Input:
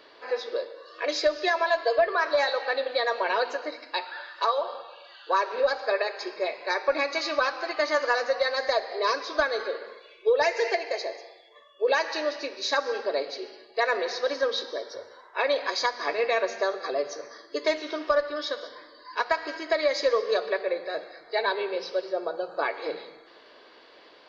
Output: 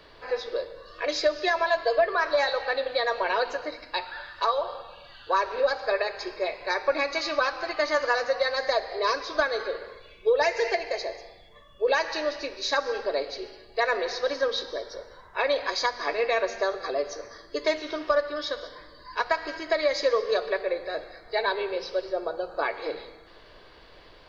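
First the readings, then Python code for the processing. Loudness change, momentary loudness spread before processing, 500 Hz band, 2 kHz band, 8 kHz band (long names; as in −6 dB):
0.0 dB, 12 LU, 0.0 dB, 0.0 dB, can't be measured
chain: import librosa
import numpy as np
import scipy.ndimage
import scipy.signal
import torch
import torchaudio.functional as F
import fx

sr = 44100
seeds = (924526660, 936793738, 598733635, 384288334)

y = fx.dmg_noise_colour(x, sr, seeds[0], colour='brown', level_db=-56.0)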